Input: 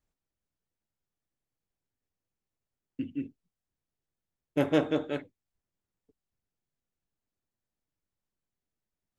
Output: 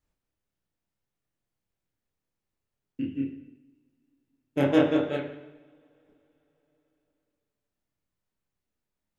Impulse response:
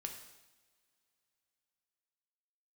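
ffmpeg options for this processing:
-filter_complex "[0:a]asplit=2[a][b];[1:a]atrim=start_sample=2205,lowpass=3.6k,adelay=29[c];[b][c]afir=irnorm=-1:irlink=0,volume=4dB[d];[a][d]amix=inputs=2:normalize=0"

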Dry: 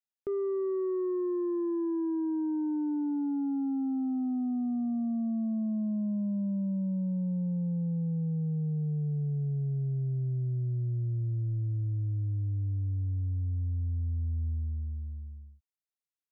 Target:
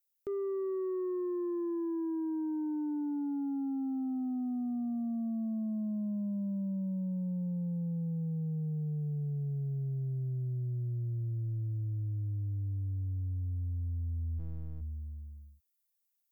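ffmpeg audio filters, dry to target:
-filter_complex "[0:a]aemphasis=mode=production:type=75fm,asplit=3[a][b][c];[a]afade=t=out:st=14.38:d=0.02[d];[b]aeval=exprs='max(val(0),0)':c=same,afade=t=in:st=14.38:d=0.02,afade=t=out:st=14.8:d=0.02[e];[c]afade=t=in:st=14.8:d=0.02[f];[d][e][f]amix=inputs=3:normalize=0,volume=-3dB"

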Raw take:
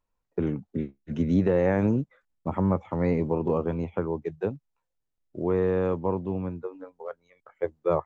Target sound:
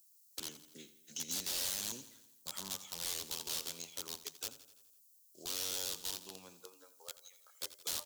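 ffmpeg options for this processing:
-af "highpass=91,aderivative,bandreject=f=3.6k:w=11,bandreject=f=299:t=h:w=4,bandreject=f=598:t=h:w=4,bandreject=f=897:t=h:w=4,bandreject=f=1.196k:t=h:w=4,bandreject=f=1.495k:t=h:w=4,bandreject=f=1.794k:t=h:w=4,bandreject=f=2.093k:t=h:w=4,bandreject=f=2.392k:t=h:w=4,bandreject=f=2.691k:t=h:w=4,bandreject=f=2.99k:t=h:w=4,bandreject=f=3.289k:t=h:w=4,bandreject=f=3.588k:t=h:w=4,bandreject=f=3.887k:t=h:w=4,bandreject=f=4.186k:t=h:w=4,bandreject=f=4.485k:t=h:w=4,bandreject=f=4.784k:t=h:w=4,bandreject=f=5.083k:t=h:w=4,bandreject=f=5.382k:t=h:w=4,bandreject=f=5.681k:t=h:w=4,bandreject=f=5.98k:t=h:w=4,bandreject=f=6.279k:t=h:w=4,bandreject=f=6.578k:t=h:w=4,bandreject=f=6.877k:t=h:w=4,bandreject=f=7.176k:t=h:w=4,bandreject=f=7.475k:t=h:w=4,bandreject=f=7.774k:t=h:w=4,bandreject=f=8.073k:t=h:w=4,bandreject=f=8.372k:t=h:w=4,bandreject=f=8.671k:t=h:w=4,bandreject=f=8.97k:t=h:w=4,bandreject=f=9.269k:t=h:w=4,bandreject=f=9.568k:t=h:w=4,bandreject=f=9.867k:t=h:w=4,bandreject=f=10.166k:t=h:w=4,bandreject=f=10.465k:t=h:w=4,bandreject=f=10.764k:t=h:w=4,aeval=exprs='(mod(178*val(0)+1,2)-1)/178':c=same,aexciter=amount=9.3:drive=7:freq=3.3k,asoftclip=type=hard:threshold=-35dB,aecho=1:1:84|168|252|336|420|504:0.178|0.103|0.0598|0.0347|0.0201|0.0117,volume=2dB"

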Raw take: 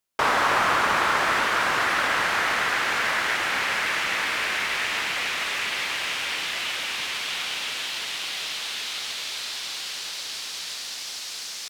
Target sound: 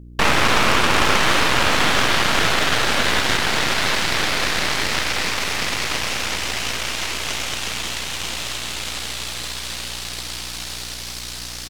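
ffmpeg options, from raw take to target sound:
-af "aecho=1:1:746:0.398,aeval=exprs='val(0)+0.0112*(sin(2*PI*60*n/s)+sin(2*PI*2*60*n/s)/2+sin(2*PI*3*60*n/s)/3+sin(2*PI*4*60*n/s)/4+sin(2*PI*5*60*n/s)/5)':c=same,aeval=exprs='0.422*(cos(1*acos(clip(val(0)/0.422,-1,1)))-cos(1*PI/2))+0.188*(cos(6*acos(clip(val(0)/0.422,-1,1)))-cos(6*PI/2))':c=same"

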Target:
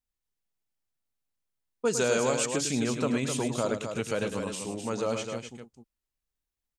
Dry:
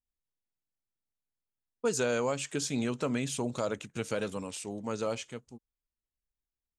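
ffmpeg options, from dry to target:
-filter_complex "[0:a]asettb=1/sr,asplit=3[a][b][c];[a]atrim=end=2.004[d];[b]atrim=start=2:end=2.46,asetpts=PTS-STARTPTS,afade=t=in:d=0.004:c=qsin,afade=t=out:st=0.456:d=0.004:c=qsin,bass=f=250:g=-1,treble=f=4k:g=7[e];[c]atrim=start=2.456[f];[d][e]acrossfade=d=0.004:c1=hsin:c2=qsin[g];[g][f]acrossfade=d=0.004:c1=qsin:c2=hsin,asplit=2[h][i];[i]aecho=0:1:105|256.6:0.355|0.447[j];[h][j]amix=inputs=2:normalize=0,volume=2.5dB"

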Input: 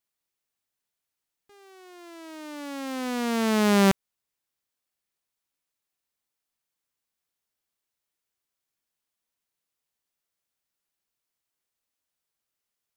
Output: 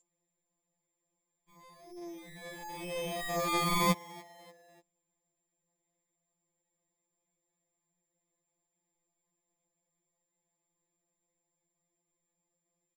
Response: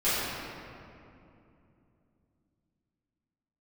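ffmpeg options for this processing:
-filter_complex "[0:a]acrusher=samples=31:mix=1:aa=0.000001,aeval=exprs='val(0)+0.00251*sin(2*PI*7300*n/s)':c=same,asplit=4[a][b][c][d];[b]adelay=293,afreqshift=31,volume=-21dB[e];[c]adelay=586,afreqshift=62,volume=-28.7dB[f];[d]adelay=879,afreqshift=93,volume=-36.5dB[g];[a][e][f][g]amix=inputs=4:normalize=0,afftfilt=real='re*2.83*eq(mod(b,8),0)':imag='im*2.83*eq(mod(b,8),0)':win_size=2048:overlap=0.75,volume=-1.5dB"

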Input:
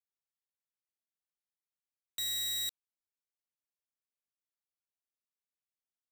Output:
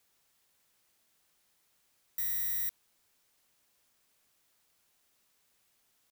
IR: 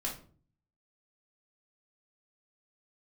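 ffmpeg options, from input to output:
-af "atempo=1,aeval=exprs='0.0335*sin(PI/2*8.91*val(0)/0.0335)':c=same"

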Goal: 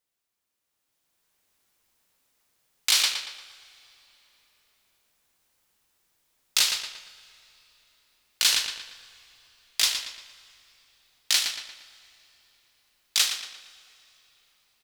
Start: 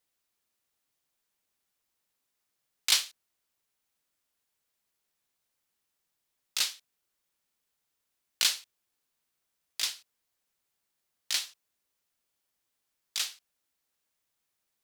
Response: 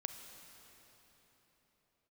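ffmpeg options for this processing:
-filter_complex "[0:a]asplit=2[a][b];[b]adelay=116,lowpass=f=5k:p=1,volume=-8dB,asplit=2[c][d];[d]adelay=116,lowpass=f=5k:p=1,volume=0.48,asplit=2[e][f];[f]adelay=116,lowpass=f=5k:p=1,volume=0.48,asplit=2[g][h];[h]adelay=116,lowpass=f=5k:p=1,volume=0.48,asplit=2[i][j];[j]adelay=116,lowpass=f=5k:p=1,volume=0.48,asplit=2[k][l];[l]adelay=116,lowpass=f=5k:p=1,volume=0.48[m];[a][c][e][g][i][k][m]amix=inputs=7:normalize=0,alimiter=limit=-17dB:level=0:latency=1:release=111,dynaudnorm=f=310:g=7:m=12.5dB,asplit=2[n][o];[o]asubboost=boost=6:cutoff=86[p];[1:a]atrim=start_sample=2205,highshelf=f=6.4k:g=-9,adelay=39[q];[p][q]afir=irnorm=-1:irlink=0,volume=-9dB[r];[n][r]amix=inputs=2:normalize=0,volume=-2.5dB"

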